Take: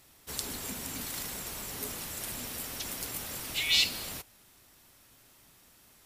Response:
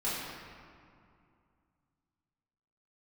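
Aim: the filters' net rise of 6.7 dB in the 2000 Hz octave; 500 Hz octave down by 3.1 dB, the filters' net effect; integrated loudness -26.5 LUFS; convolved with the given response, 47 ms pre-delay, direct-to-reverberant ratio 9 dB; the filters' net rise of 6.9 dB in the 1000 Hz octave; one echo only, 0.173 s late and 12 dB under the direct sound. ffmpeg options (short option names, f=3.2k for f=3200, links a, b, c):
-filter_complex "[0:a]equalizer=f=500:t=o:g=-7,equalizer=f=1k:t=o:g=8.5,equalizer=f=2k:t=o:g=7,aecho=1:1:173:0.251,asplit=2[a][b];[1:a]atrim=start_sample=2205,adelay=47[c];[b][c]afir=irnorm=-1:irlink=0,volume=-16.5dB[d];[a][d]amix=inputs=2:normalize=0,volume=3dB"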